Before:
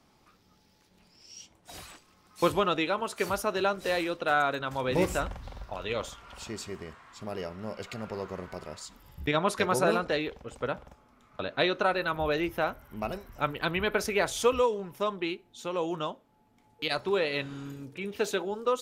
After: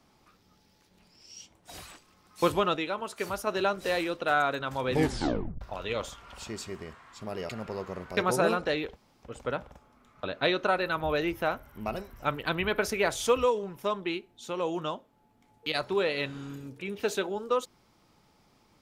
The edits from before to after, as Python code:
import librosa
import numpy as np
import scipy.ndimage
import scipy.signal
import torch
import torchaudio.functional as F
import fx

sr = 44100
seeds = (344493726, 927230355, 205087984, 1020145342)

y = fx.edit(x, sr, fx.clip_gain(start_s=2.76, length_s=0.71, db=-3.5),
    fx.tape_stop(start_s=4.92, length_s=0.69),
    fx.cut(start_s=7.49, length_s=0.42),
    fx.cut(start_s=8.59, length_s=1.01),
    fx.insert_room_tone(at_s=10.39, length_s=0.27), tone=tone)